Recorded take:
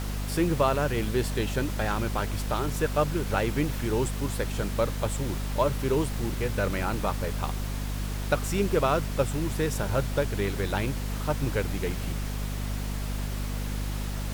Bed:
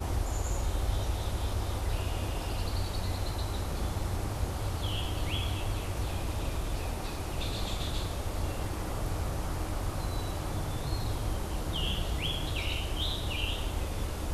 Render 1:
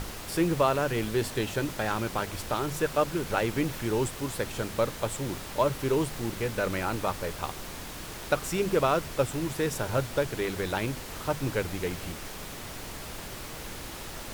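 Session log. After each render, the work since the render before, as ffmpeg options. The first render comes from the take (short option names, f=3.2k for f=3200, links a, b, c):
-af "bandreject=f=50:t=h:w=6,bandreject=f=100:t=h:w=6,bandreject=f=150:t=h:w=6,bandreject=f=200:t=h:w=6,bandreject=f=250:t=h:w=6"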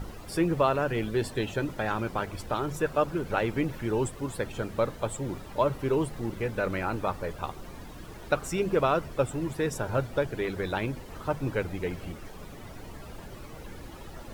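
-af "afftdn=nr=13:nf=-40"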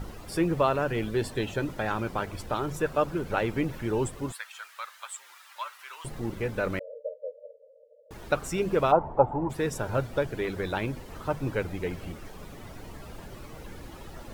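-filter_complex "[0:a]asettb=1/sr,asplit=3[a][b][c];[a]atrim=end=4.324[d];[b]atrim=start=4.32:end=6.05,asetpts=PTS-STARTPTS,afade=t=in:d=0.004:c=qsin,afade=t=out:st=1.726:d=0.004:c=qsin,highpass=f=1.2k:w=0.5412,highpass=f=1.2k:w=1.3066[e];[c]atrim=start=6.046[f];[d][e]acrossfade=d=0.004:c1=hsin:c2=qsin[g];[g][f]acrossfade=d=0.004:c1=qsin:c2=hsin,asettb=1/sr,asplit=3[h][i][j];[h]atrim=end=6.794[k];[i]atrim=start=6.79:end=8.11,asetpts=PTS-STARTPTS,afade=t=in:d=0.004:c=qsin,afade=t=out:st=1.316:d=0.004:c=qsin,asuperpass=centerf=530:order=20:qfactor=3[l];[j]atrim=start=8.106[m];[k][l]acrossfade=d=0.004:c1=hsin:c2=qsin[n];[n][m]acrossfade=d=0.004:c1=qsin:c2=hsin,asplit=3[o][p][q];[o]afade=t=out:st=8.91:d=0.02[r];[p]lowpass=f=860:t=q:w=9.4,afade=t=in:st=8.91:d=0.02,afade=t=out:st=9.49:d=0.02[s];[q]afade=t=in:st=9.49:d=0.02[t];[r][s][t]amix=inputs=3:normalize=0"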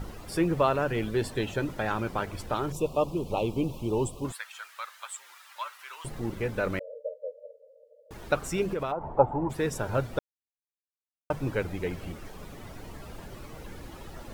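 -filter_complex "[0:a]asettb=1/sr,asplit=3[a][b][c];[a]atrim=end=2.724[d];[b]atrim=start=2.72:end=4.25,asetpts=PTS-STARTPTS,afade=t=in:d=0.004:c=qsin,afade=t=out:st=1.526:d=0.004:c=qsin,asuperstop=centerf=1700:order=8:qfactor=1.2[e];[c]atrim=start=4.246[f];[d][e]acrossfade=d=0.004:c1=hsin:c2=qsin[g];[g][f]acrossfade=d=0.004:c1=qsin:c2=hsin,asettb=1/sr,asplit=3[h][i][j];[h]atrim=end=8.654[k];[i]atrim=start=8.65:end=9.12,asetpts=PTS-STARTPTS,afade=t=in:d=0.004:c=qsin,afade=t=out:st=0.466:d=0.004:c=qsin,acompressor=threshold=-27dB:ratio=6:attack=3.2:release=140:knee=1:detection=peak[l];[j]atrim=start=9.116[m];[k][l]acrossfade=d=0.004:c1=hsin:c2=qsin[n];[n][m]acrossfade=d=0.004:c1=qsin:c2=hsin,asplit=3[o][p][q];[o]atrim=end=10.19,asetpts=PTS-STARTPTS,afade=t=out:st=10.186:d=0.004:c=hsin[r];[p]atrim=start=10.19:end=11.3,asetpts=PTS-STARTPTS,volume=0[s];[q]atrim=start=11.3,asetpts=PTS-STARTPTS,afade=t=in:d=0.004:c=hsin[t];[r][s][t]concat=n=3:v=0:a=1"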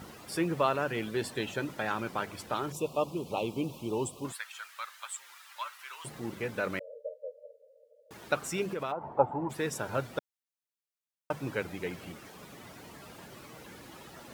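-af "highpass=170,equalizer=f=430:t=o:w=2.6:g=-4.5"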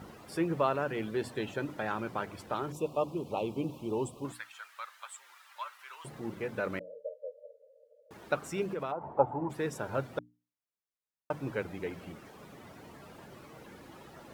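-af "highshelf=f=2.1k:g=-8.5,bandreject=f=60:t=h:w=6,bandreject=f=120:t=h:w=6,bandreject=f=180:t=h:w=6,bandreject=f=240:t=h:w=6,bandreject=f=300:t=h:w=6"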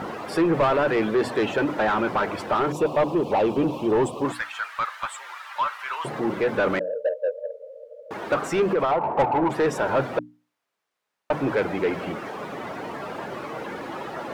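-filter_complex "[0:a]asplit=2[a][b];[b]highpass=f=720:p=1,volume=27dB,asoftclip=type=tanh:threshold=-11.5dB[c];[a][c]amix=inputs=2:normalize=0,lowpass=f=1.1k:p=1,volume=-6dB,asplit=2[d][e];[e]asoftclip=type=tanh:threshold=-25.5dB,volume=-6dB[f];[d][f]amix=inputs=2:normalize=0"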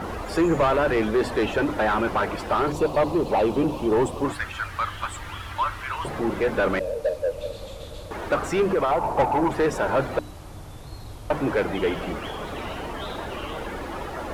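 -filter_complex "[1:a]volume=-6.5dB[a];[0:a][a]amix=inputs=2:normalize=0"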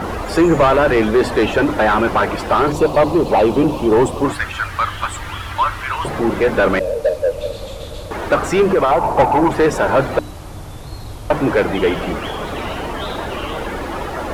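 -af "volume=8dB"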